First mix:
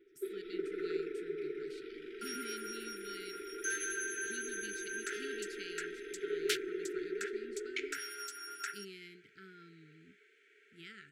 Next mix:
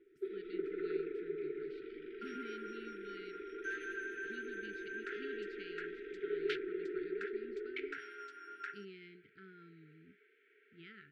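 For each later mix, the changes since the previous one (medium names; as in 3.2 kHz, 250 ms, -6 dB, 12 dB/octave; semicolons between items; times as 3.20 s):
second sound: add treble shelf 7.3 kHz -6.5 dB; master: add distance through air 350 m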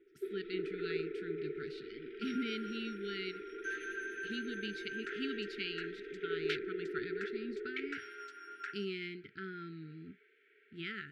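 speech +11.5 dB; master: add treble shelf 3.5 kHz +7 dB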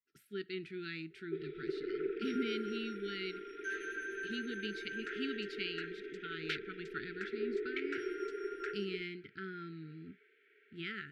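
first sound: entry +1.10 s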